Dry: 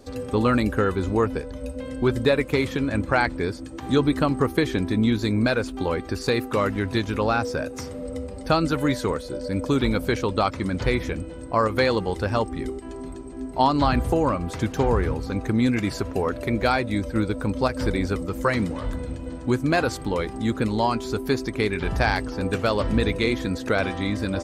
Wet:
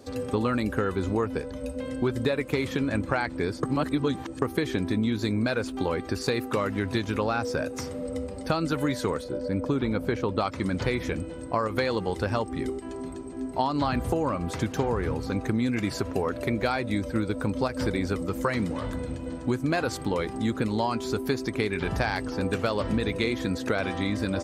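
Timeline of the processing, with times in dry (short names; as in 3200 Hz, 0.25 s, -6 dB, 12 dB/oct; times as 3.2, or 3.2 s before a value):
3.63–4.42 reverse
9.24–10.39 high shelf 3000 Hz -11.5 dB
whole clip: HPF 75 Hz; compressor, threshold -22 dBFS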